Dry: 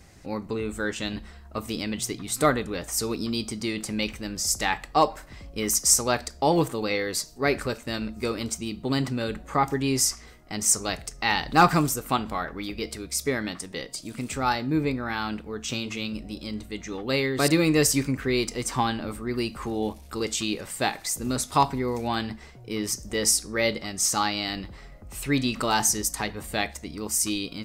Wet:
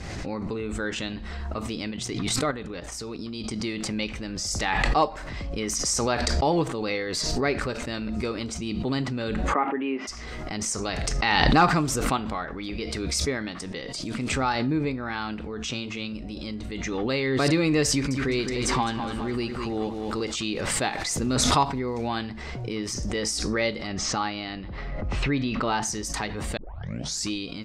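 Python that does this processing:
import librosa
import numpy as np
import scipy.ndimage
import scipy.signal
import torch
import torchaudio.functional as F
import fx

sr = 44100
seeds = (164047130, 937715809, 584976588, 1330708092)

y = fx.level_steps(x, sr, step_db=11, at=(1.91, 3.6))
y = fx.cheby1_bandpass(y, sr, low_hz=210.0, high_hz=2800.0, order=4, at=(9.52, 10.07), fade=0.02)
y = fx.echo_crushed(y, sr, ms=207, feedback_pct=35, bits=8, wet_db=-7.0, at=(17.9, 20.36))
y = fx.air_absorb(y, sr, metres=170.0, at=(23.87, 25.82))
y = fx.edit(y, sr, fx.tape_start(start_s=26.57, length_s=0.72), tone=tone)
y = scipy.signal.sosfilt(scipy.signal.butter(2, 5300.0, 'lowpass', fs=sr, output='sos'), y)
y = fx.pre_swell(y, sr, db_per_s=21.0)
y = y * librosa.db_to_amplitude(-2.0)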